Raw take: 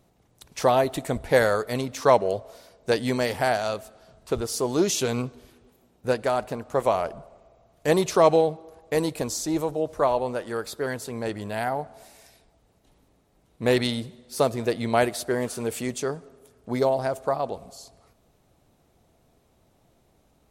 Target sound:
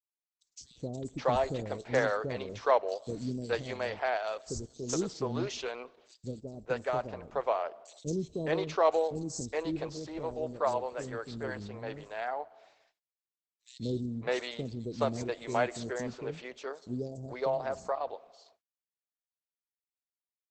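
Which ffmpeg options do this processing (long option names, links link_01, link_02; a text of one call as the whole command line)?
ffmpeg -i in.wav -filter_complex "[0:a]agate=range=-54dB:threshold=-51dB:ratio=16:detection=peak,acrossover=split=380|4900[link_01][link_02][link_03];[link_01]adelay=190[link_04];[link_02]adelay=610[link_05];[link_04][link_05][link_03]amix=inputs=3:normalize=0,volume=-6dB" -ar 48000 -c:a libopus -b:a 12k out.opus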